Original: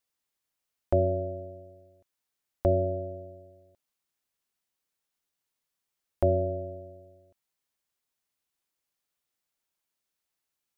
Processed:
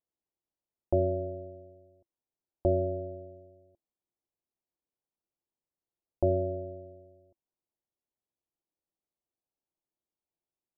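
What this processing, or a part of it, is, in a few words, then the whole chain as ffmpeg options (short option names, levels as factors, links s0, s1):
under water: -af "lowpass=f=870:w=0.5412,lowpass=f=870:w=1.3066,equalizer=f=340:t=o:w=0.22:g=7,volume=0.708"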